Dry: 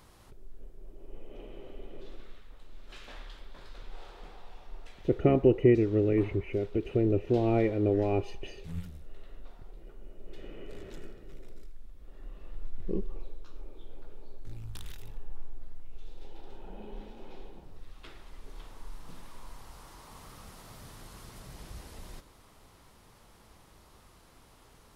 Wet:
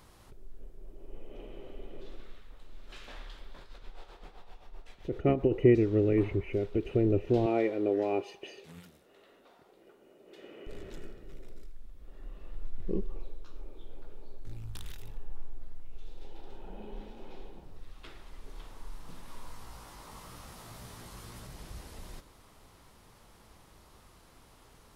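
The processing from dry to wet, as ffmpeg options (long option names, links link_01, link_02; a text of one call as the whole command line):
ffmpeg -i in.wav -filter_complex "[0:a]asettb=1/sr,asplit=3[link_01][link_02][link_03];[link_01]atrim=end=3.614[link_04];[link_02]atrim=start=3.61:end=5.52,asetpts=PTS-STARTPTS,afade=type=in:duration=0.004:curve=qsin,afade=type=out:start_time=1.906:duration=0.004:curve=qsin,tremolo=f=7.7:d=0.64[link_05];[link_03]atrim=start=5.516[link_06];[link_04][link_05]acrossfade=duration=0.004:curve1=hsin:curve2=qsin[link_07];[link_07][link_06]acrossfade=duration=0.004:curve1=qsin:curve2=hsin,asettb=1/sr,asplit=3[link_08][link_09][link_10];[link_08]atrim=end=7.464[link_11];[link_09]atrim=start=7.46:end=10.67,asetpts=PTS-STARTPTS,afade=type=in:duration=0.004:curve=qsin,afade=type=out:start_time=3.206:duration=0.004:curve=qsin,highpass=290[link_12];[link_10]atrim=start=10.666[link_13];[link_11][link_12]acrossfade=duration=0.004:curve1=hsin:curve2=qsin[link_14];[link_14][link_13]acrossfade=duration=0.004:curve1=qsin:curve2=hsin,asettb=1/sr,asplit=3[link_15][link_16][link_17];[link_15]atrim=end=19.264[link_18];[link_16]atrim=start=19.26:end=21.47,asetpts=PTS-STARTPTS,afade=type=in:duration=0.004:curve=qsin,afade=type=out:start_time=2.206:duration=0.004:curve=qsin,asplit=2[link_19][link_20];[link_20]adelay=17,volume=-3dB[link_21];[link_19][link_21]amix=inputs=2:normalize=0,atrim=end_sample=97461[link_22];[link_17]atrim=start=21.466[link_23];[link_18][link_22]acrossfade=duration=0.004:curve1=hsin:curve2=qsin[link_24];[link_24][link_23]acrossfade=duration=0.004:curve1=qsin:curve2=hsin" out.wav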